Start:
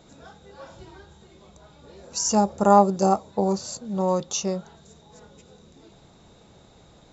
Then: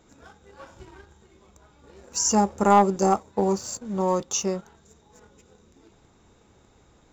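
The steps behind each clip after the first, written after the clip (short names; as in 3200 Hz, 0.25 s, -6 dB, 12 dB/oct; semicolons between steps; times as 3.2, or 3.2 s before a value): fifteen-band EQ 160 Hz -8 dB, 630 Hz -7 dB, 4000 Hz -9 dB; sample leveller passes 1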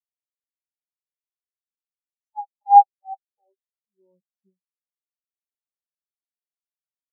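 low shelf 370 Hz +3 dB; high-pass sweep 790 Hz -> 79 Hz, 3.29–4.79; spectral expander 4:1; gain -1.5 dB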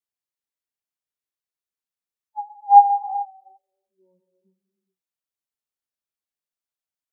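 non-linear reverb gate 0.45 s flat, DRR 8.5 dB; gain +1 dB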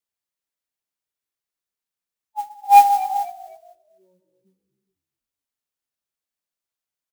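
soft clip -4.5 dBFS, distortion -16 dB; modulation noise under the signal 21 dB; frequency-shifting echo 0.25 s, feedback 34%, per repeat -52 Hz, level -18 dB; gain +2.5 dB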